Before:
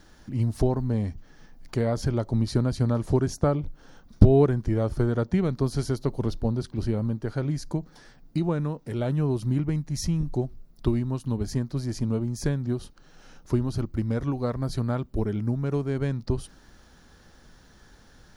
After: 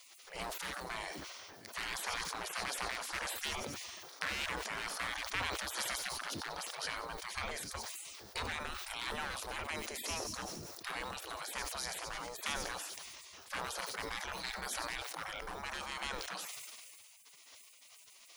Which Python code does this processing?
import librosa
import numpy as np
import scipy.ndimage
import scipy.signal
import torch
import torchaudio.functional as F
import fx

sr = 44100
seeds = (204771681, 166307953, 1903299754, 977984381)

y = np.clip(10.0 ** (21.0 / 20.0) * x, -1.0, 1.0) / 10.0 ** (21.0 / 20.0)
y = fx.echo_wet_highpass(y, sr, ms=95, feedback_pct=61, hz=3400.0, wet_db=-17)
y = fx.spec_gate(y, sr, threshold_db=-30, keep='weak')
y = fx.low_shelf(y, sr, hz=150.0, db=4.5)
y = fx.sustainer(y, sr, db_per_s=24.0)
y = y * 10.0 ** (8.5 / 20.0)